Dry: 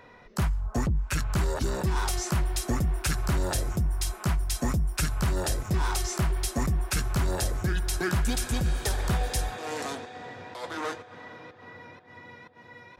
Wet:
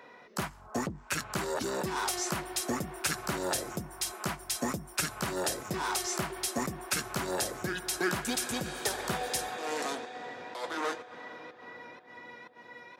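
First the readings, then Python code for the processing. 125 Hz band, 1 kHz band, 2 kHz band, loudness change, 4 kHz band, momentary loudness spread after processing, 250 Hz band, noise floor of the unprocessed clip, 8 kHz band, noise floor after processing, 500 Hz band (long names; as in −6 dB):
−14.0 dB, 0.0 dB, 0.0 dB, −4.0 dB, 0.0 dB, 15 LU, −4.0 dB, −52 dBFS, 0.0 dB, −53 dBFS, −0.5 dB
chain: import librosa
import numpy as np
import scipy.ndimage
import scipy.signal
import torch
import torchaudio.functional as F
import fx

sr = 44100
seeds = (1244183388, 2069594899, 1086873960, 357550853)

y = scipy.signal.sosfilt(scipy.signal.butter(2, 250.0, 'highpass', fs=sr, output='sos'), x)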